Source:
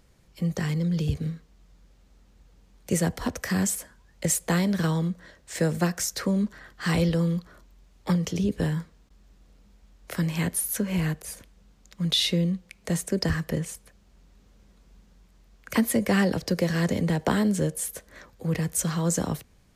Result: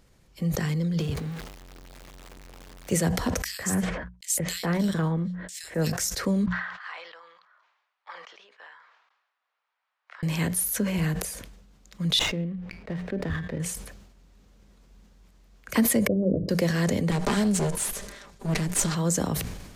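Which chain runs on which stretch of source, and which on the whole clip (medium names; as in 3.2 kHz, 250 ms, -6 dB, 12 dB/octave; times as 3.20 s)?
1.00–2.92 s: jump at every zero crossing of -37 dBFS + tone controls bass -6 dB, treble -4 dB
3.44–5.93 s: gate -51 dBFS, range -57 dB + transient shaper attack -5 dB, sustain -11 dB + bands offset in time highs, lows 150 ms, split 2.6 kHz
6.46–10.23 s: high-pass 1 kHz 24 dB/octave + tape spacing loss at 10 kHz 43 dB
12.19–13.60 s: low-pass 2.8 kHz 24 dB/octave + feedback comb 84 Hz, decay 0.38 s, harmonics odd, mix 50% + sliding maximum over 5 samples
16.07–16.49 s: steep low-pass 630 Hz 96 dB/octave + hum notches 50/100/150/200/250/300/350/400/450 Hz
17.11–18.95 s: comb filter that takes the minimum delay 5 ms + low-pass 8.7 kHz + treble shelf 5.6 kHz +9.5 dB
whole clip: hum notches 60/120/180 Hz; decay stretcher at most 53 dB/s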